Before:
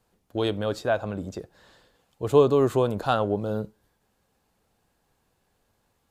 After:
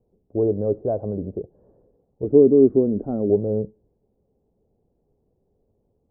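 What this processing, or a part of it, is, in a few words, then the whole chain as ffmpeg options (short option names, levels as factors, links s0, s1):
under water: -filter_complex "[0:a]lowpass=f=580:w=0.5412,lowpass=f=580:w=1.3066,equalizer=f=410:t=o:w=0.24:g=6.5,asettb=1/sr,asplit=3[s0][s1][s2];[s0]atrim=end=2.244[s3];[s1]atrim=start=2.24:end=3.3,asetpts=PTS-STARTPTS,afade=t=in:d=0.004:c=qsin,afade=t=out:st=1.056:d=0.004:c=qsin,equalizer=f=125:t=o:w=1:g=-9,equalizer=f=250:t=o:w=1:g=10,equalizer=f=500:t=o:w=1:g=-6,equalizer=f=1000:t=o:w=1:g=-10,equalizer=f=2000:t=o:w=1:g=6,equalizer=f=4000:t=o:w=1:g=-10[s4];[s2]atrim=start=3.296[s5];[s3][s4]acrossfade=d=0.004:c1=hsin:c2=qsin[s6];[s6][s5]acrossfade=d=0.004:c1=qsin:c2=hsin,volume=1.58"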